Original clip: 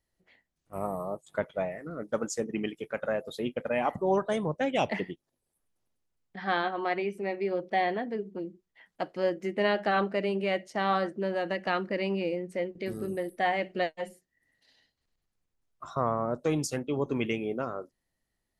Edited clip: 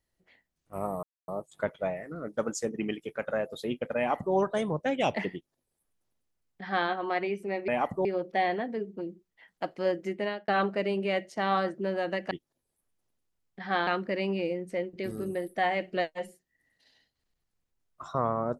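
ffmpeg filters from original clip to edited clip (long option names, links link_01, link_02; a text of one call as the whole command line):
ffmpeg -i in.wav -filter_complex "[0:a]asplit=7[link_01][link_02][link_03][link_04][link_05][link_06][link_07];[link_01]atrim=end=1.03,asetpts=PTS-STARTPTS,afade=type=out:start_time=1.026:duration=0.004:curve=hsin,apad=pad_dur=0.25[link_08];[link_02]atrim=start=1.03:end=7.432,asetpts=PTS-STARTPTS,afade=type=in:duration=0.004:curve=hsin[link_09];[link_03]atrim=start=3.718:end=4.092[link_10];[link_04]atrim=start=7.428:end=9.86,asetpts=PTS-STARTPTS,afade=type=out:start_time=2.032:duration=0.4[link_11];[link_05]atrim=start=9.86:end=11.692,asetpts=PTS-STARTPTS,afade=type=in:duration=0.004:curve=hsin[link_12];[link_06]atrim=start=5.078:end=6.642[link_13];[link_07]atrim=start=11.688[link_14];[link_08][link_09]concat=n=2:v=0:a=1[link_15];[link_15][link_10]acrossfade=duration=0.004:curve1=hsin:curve2=hsin[link_16];[link_11][link_12]concat=n=2:v=0:a=1[link_17];[link_16][link_17]acrossfade=duration=0.004:curve1=hsin:curve2=hsin[link_18];[link_18][link_13]acrossfade=duration=0.004:curve1=hsin:curve2=hsin[link_19];[link_19][link_14]acrossfade=duration=0.004:curve1=hsin:curve2=hsin" out.wav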